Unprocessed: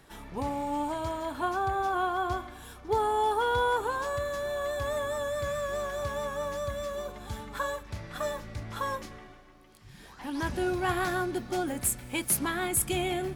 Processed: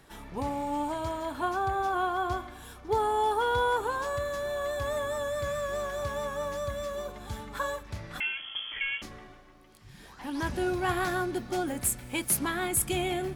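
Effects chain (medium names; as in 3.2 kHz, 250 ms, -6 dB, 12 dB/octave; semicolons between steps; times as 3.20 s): 8.20–9.02 s: frequency inversion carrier 3.3 kHz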